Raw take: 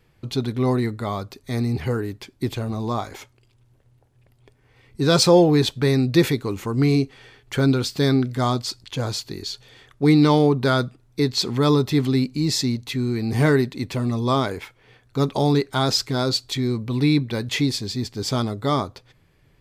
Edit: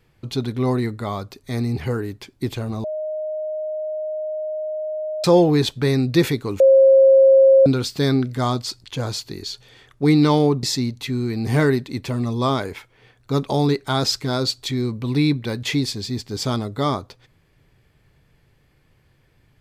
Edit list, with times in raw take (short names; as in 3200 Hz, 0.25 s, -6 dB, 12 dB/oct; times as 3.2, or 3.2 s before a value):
2.84–5.24 bleep 619 Hz -23.5 dBFS
6.6–7.66 bleep 537 Hz -8 dBFS
10.63–12.49 cut